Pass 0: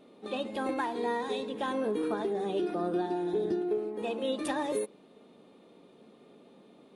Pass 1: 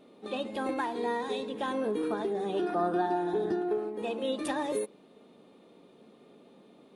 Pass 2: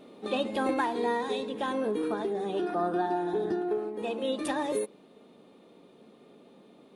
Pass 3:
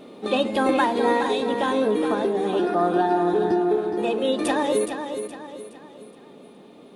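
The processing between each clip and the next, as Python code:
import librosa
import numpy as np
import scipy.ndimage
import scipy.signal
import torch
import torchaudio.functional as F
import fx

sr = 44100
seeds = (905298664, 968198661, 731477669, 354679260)

y1 = fx.spec_box(x, sr, start_s=2.54, length_s=1.36, low_hz=660.0, high_hz=1900.0, gain_db=7)
y2 = fx.rider(y1, sr, range_db=10, speed_s=2.0)
y2 = y2 * 10.0 ** (1.0 / 20.0)
y3 = fx.echo_feedback(y2, sr, ms=419, feedback_pct=40, wet_db=-8)
y3 = y3 * 10.0 ** (7.5 / 20.0)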